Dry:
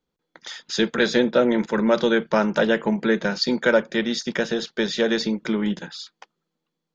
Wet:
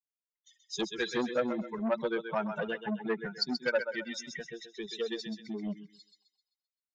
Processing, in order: per-bin expansion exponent 3; thinning echo 0.13 s, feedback 42%, high-pass 510 Hz, level -7 dB; core saturation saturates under 870 Hz; gain -5 dB

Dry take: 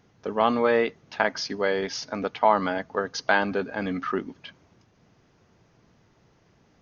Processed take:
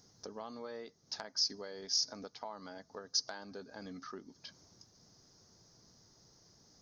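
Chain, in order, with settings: compressor 3:1, threshold -41 dBFS, peak gain reduction 20 dB; resonant high shelf 3700 Hz +11.5 dB, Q 3; gain -6.5 dB

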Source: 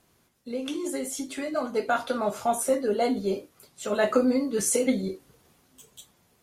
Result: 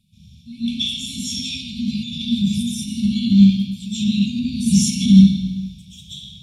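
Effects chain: LPF 10000 Hz 12 dB/oct; reverb RT60 1.1 s, pre-delay 0.115 s, DRR -14 dB; limiter 0 dBFS, peak gain reduction 10.5 dB; brick-wall FIR band-stop 230–2200 Hz; 0.93–1.62 dynamic EQ 400 Hz, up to +6 dB, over -52 dBFS, Q 1.6; gain +3 dB

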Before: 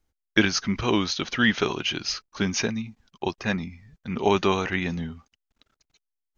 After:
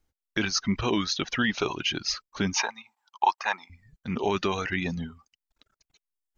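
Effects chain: reverb removal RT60 0.65 s; limiter -14.5 dBFS, peak gain reduction 9.5 dB; 2.53–3.7 resonant high-pass 890 Hz, resonance Q 6.8

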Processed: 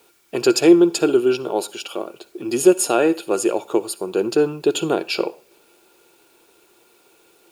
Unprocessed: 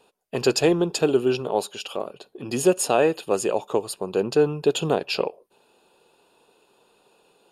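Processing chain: HPF 190 Hz 6 dB/oct; high shelf 5800 Hz +6 dB; in parallel at -10.5 dB: requantised 8-bit, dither triangular; on the sum: small resonant body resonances 340/1400/2300 Hz, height 13 dB, ringing for 70 ms; reverb, pre-delay 53 ms, DRR 19 dB; gain -2 dB

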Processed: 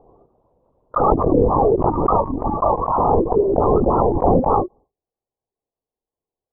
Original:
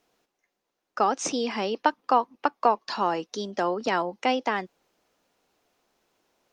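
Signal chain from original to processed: expander -50 dBFS; Chebyshev band-pass 260–1200 Hz, order 4; tilt -2.5 dB/oct; in parallel at -1 dB: negative-ratio compressor -28 dBFS, ratio -1; on the sum: limiter -13.5 dBFS, peak gain reduction 8.5 dB; loudest bins only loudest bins 32; LPC vocoder at 8 kHz whisper; backwards sustainer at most 25 dB/s; gain +6 dB

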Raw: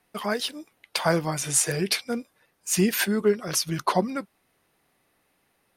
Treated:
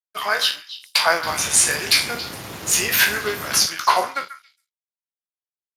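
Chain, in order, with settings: spectral trails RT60 0.37 s; HPF 970 Hz 12 dB/oct; 1.22–3.65 added noise pink -39 dBFS; high shelf 8500 Hz +7 dB; sample leveller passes 1; crossover distortion -44 dBFS; bell 11000 Hz -5.5 dB 1.6 oct; delay with a stepping band-pass 0.138 s, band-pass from 1500 Hz, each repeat 1.4 oct, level -11 dB; gain +6 dB; Speex 36 kbps 32000 Hz

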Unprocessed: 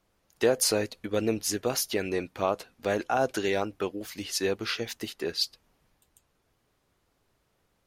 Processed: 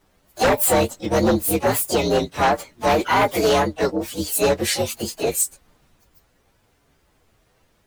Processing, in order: inharmonic rescaling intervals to 120%; harmoniser +7 st -8 dB; sine folder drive 10 dB, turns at -12 dBFS

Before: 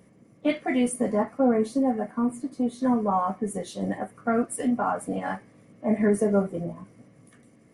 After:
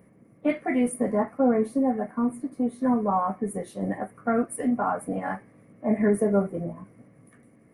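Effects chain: band shelf 4800 Hz -11.5 dB

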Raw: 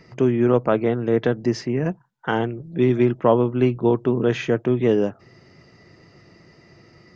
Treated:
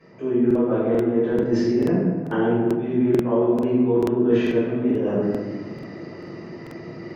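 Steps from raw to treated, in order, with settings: HPF 280 Hz 12 dB/oct; tilt -3 dB/oct; reverse; compressor 16:1, threshold -30 dBFS, peak gain reduction 21.5 dB; reverse; reverb RT60 1.5 s, pre-delay 4 ms, DRR -14.5 dB; crackling interface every 0.44 s, samples 2048, repeat, from 0.46; gain -5.5 dB

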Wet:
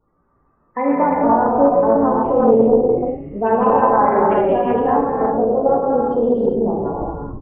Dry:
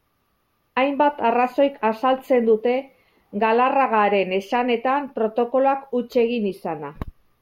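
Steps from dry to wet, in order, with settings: LPF 2100 Hz 12 dB/oct; spectral gate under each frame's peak -15 dB strong; in parallel at +1.5 dB: compressor, threshold -28 dBFS, peak gain reduction 14 dB; on the sum: resonator 56 Hz, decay 0.22 s, harmonics all, mix 80%; on a send: frequency-shifting echo 0.126 s, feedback 61%, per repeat -100 Hz, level -15 dB; on the sum: non-linear reverb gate 0.43 s flat, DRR -6 dB; Doppler distortion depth 0.21 ms

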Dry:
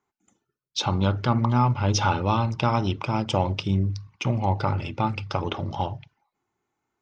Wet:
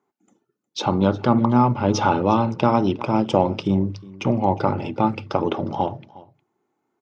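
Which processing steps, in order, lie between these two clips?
HPF 240 Hz 12 dB/oct; tilt shelf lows +7.5 dB, about 900 Hz; echo 0.359 s -21 dB; gain +4.5 dB

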